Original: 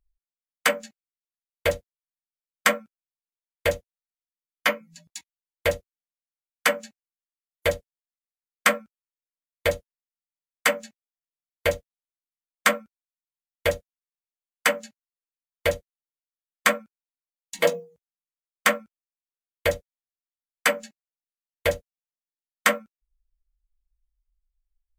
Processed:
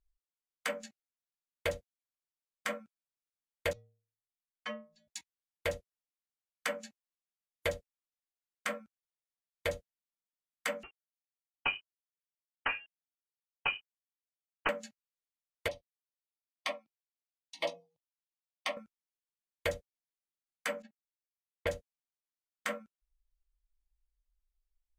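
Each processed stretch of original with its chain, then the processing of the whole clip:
3.73–5.08 LPF 5100 Hz + tone controls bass +5 dB, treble -2 dB + metallic resonator 110 Hz, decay 0.47 s, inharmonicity 0.008
10.83–14.69 CVSD 32 kbps + inverted band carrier 3000 Hz
15.68–18.77 polynomial smoothing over 15 samples + low shelf 460 Hz -10.5 dB + fixed phaser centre 300 Hz, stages 8
20.82–21.67 tape spacing loss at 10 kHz 38 dB + gate -49 dBFS, range -6 dB
whole clip: Bessel low-pass 11000 Hz; compressor, threshold -22 dBFS; limiter -14.5 dBFS; gain -5 dB

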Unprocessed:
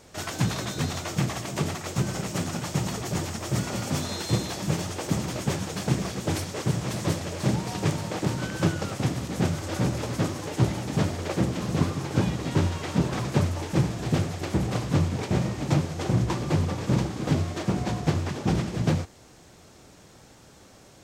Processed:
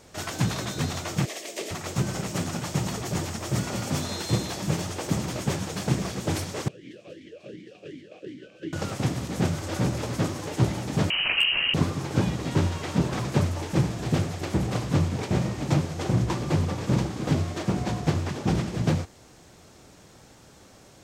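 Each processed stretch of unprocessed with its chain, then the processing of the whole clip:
1.25–1.71 HPF 360 Hz 24 dB/oct + band shelf 1100 Hz -11 dB 1.2 oct
6.68–8.73 band shelf 970 Hz -14 dB 1.3 oct + vowel sweep a-i 2.7 Hz
11.1–11.74 inverted band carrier 3000 Hz + overloaded stage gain 14.5 dB + fast leveller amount 50%
whole clip: dry

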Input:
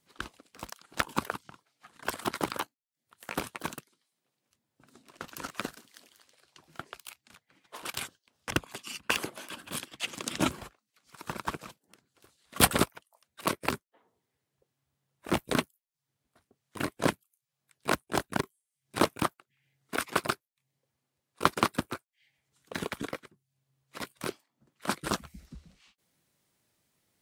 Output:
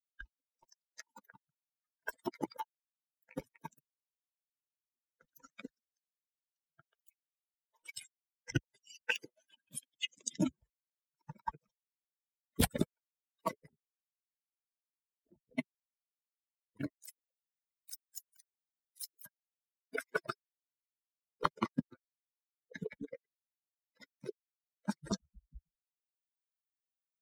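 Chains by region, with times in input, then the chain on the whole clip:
0.63–1.34 Bessel high-pass 200 Hz, order 8 + compressor, threshold -31 dBFS
13.67–15.59 compressor, threshold -36 dBFS + tape spacing loss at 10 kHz 45 dB
16.96–19.26 differentiator + delay with a stepping band-pass 0.124 s, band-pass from 340 Hz, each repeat 0.7 oct, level -3 dB
whole clip: per-bin expansion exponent 3; low shelf 350 Hz +10 dB; compressor 3:1, threshold -40 dBFS; gain +7.5 dB

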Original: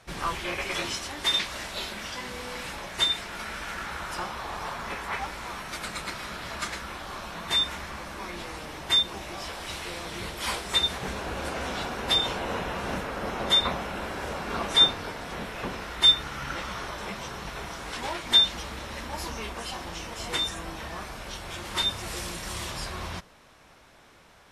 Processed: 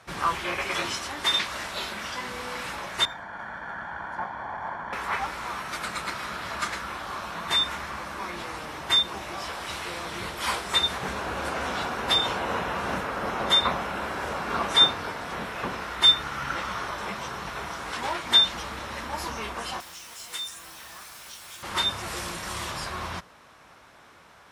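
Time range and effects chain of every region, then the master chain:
3.05–4.93 minimum comb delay 1.2 ms + polynomial smoothing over 41 samples + low shelf 110 Hz -8.5 dB
19.8–21.63 pre-emphasis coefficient 0.9 + upward compressor, threshold -39 dBFS + requantised 8-bit, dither none
whole clip: HPF 62 Hz; bell 1200 Hz +5.5 dB 1.3 oct

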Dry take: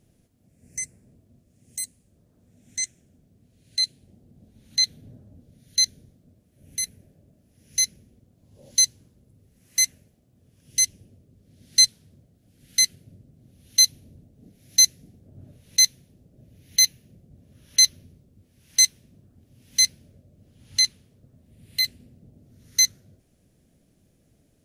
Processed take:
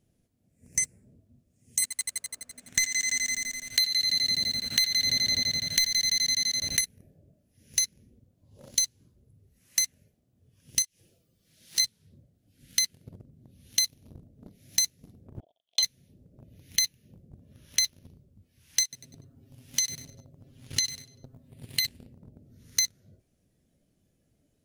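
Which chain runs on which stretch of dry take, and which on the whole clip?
1.82–6.81 bell 1400 Hz +13.5 dB 2 oct + sample leveller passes 1 + multi-head echo 84 ms, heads first and second, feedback 72%, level -12.5 dB
10.82–11.8 compressor 3:1, threshold -45 dBFS + tilt shelf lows -6.5 dB, about 700 Hz + comb 6 ms, depth 31%
15.4–15.83 sample leveller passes 5 + double band-pass 1500 Hz, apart 2.3 oct + upward expander, over -44 dBFS
18.83–21.85 comb 7.5 ms, depth 88% + compressor, threshold -26 dBFS + feedback echo 97 ms, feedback 40%, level -14 dB
whole clip: spectral noise reduction 7 dB; sample leveller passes 2; compressor 20:1, threshold -25 dBFS; gain +2.5 dB

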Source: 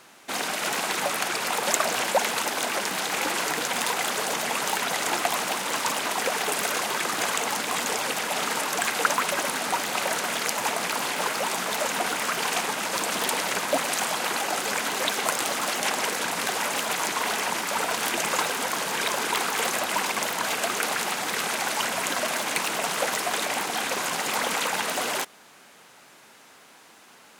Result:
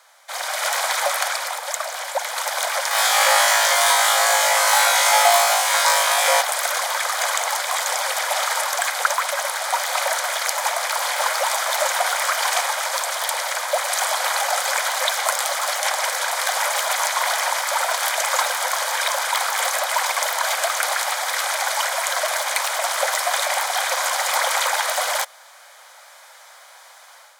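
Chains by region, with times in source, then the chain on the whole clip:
2.89–6.41 comb 7.2 ms, depth 47% + flutter echo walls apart 3.2 m, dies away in 0.82 s
whole clip: steep high-pass 520 Hz 96 dB/oct; notch 2700 Hz, Q 5.1; AGC gain up to 8 dB; gain -1 dB

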